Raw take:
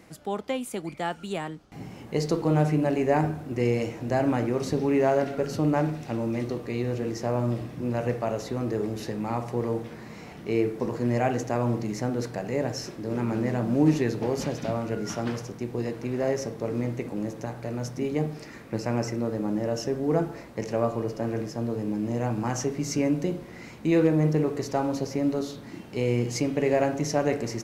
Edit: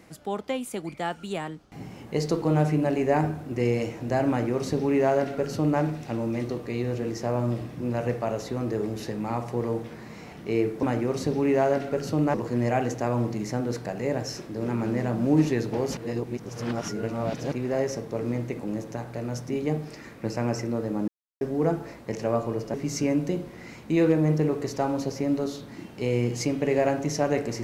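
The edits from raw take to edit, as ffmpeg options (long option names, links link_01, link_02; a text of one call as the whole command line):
ffmpeg -i in.wav -filter_complex "[0:a]asplit=8[link_01][link_02][link_03][link_04][link_05][link_06][link_07][link_08];[link_01]atrim=end=10.832[link_09];[link_02]atrim=start=4.288:end=5.802[link_10];[link_03]atrim=start=10.828:end=14.462[link_11];[link_04]atrim=start=14.458:end=16.012,asetpts=PTS-STARTPTS,areverse[link_12];[link_05]atrim=start=16.008:end=19.57,asetpts=PTS-STARTPTS,afade=type=out:start_time=3.558:duration=0.004:curve=hsin[link_13];[link_06]atrim=start=19.57:end=19.9,asetpts=PTS-STARTPTS,volume=0[link_14];[link_07]atrim=start=19.9:end=21.232,asetpts=PTS-STARTPTS,afade=type=in:duration=0.004:curve=hsin[link_15];[link_08]atrim=start=22.688[link_16];[link_09][link_10]acrossfade=duration=0.004:curve1=hsin:curve2=hsin[link_17];[link_17][link_11]acrossfade=duration=0.004:curve1=hsin:curve2=hsin[link_18];[link_18][link_12]acrossfade=duration=0.004:curve1=hsin:curve2=hsin[link_19];[link_13][link_14][link_15]concat=n=3:v=0:a=1[link_20];[link_19][link_20]acrossfade=duration=0.004:curve1=hsin:curve2=hsin[link_21];[link_21][link_16]acrossfade=duration=0.004:curve1=hsin:curve2=hsin" out.wav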